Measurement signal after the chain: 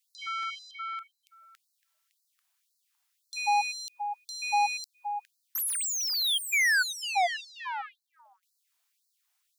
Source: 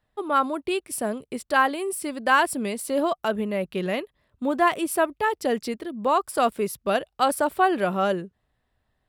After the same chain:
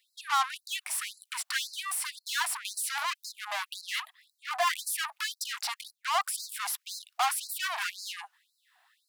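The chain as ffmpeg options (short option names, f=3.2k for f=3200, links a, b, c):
-filter_complex "[0:a]aeval=exprs='0.251*(abs(mod(val(0)/0.251+3,4)-2)-1)':c=same,equalizer=f=120:w=2.1:g=-6,apsyclip=22.5dB,asoftclip=type=tanh:threshold=-14dB,acrossover=split=2900[a][b];[b]acompressor=threshold=-21dB:ratio=4:attack=1:release=60[c];[a][c]amix=inputs=2:normalize=0,afftfilt=real='re*gte(b*sr/1024,630*pow(4000/630,0.5+0.5*sin(2*PI*1.9*pts/sr)))':imag='im*gte(b*sr/1024,630*pow(4000/630,0.5+0.5*sin(2*PI*1.9*pts/sr)))':win_size=1024:overlap=0.75,volume=-8.5dB"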